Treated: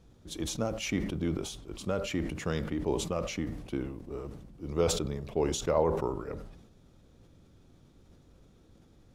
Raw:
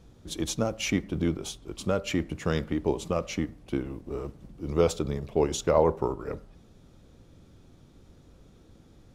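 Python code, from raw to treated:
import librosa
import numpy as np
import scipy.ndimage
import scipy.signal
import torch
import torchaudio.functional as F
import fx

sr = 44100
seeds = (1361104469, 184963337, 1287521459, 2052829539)

y = fx.sustainer(x, sr, db_per_s=60.0)
y = y * 10.0 ** (-5.0 / 20.0)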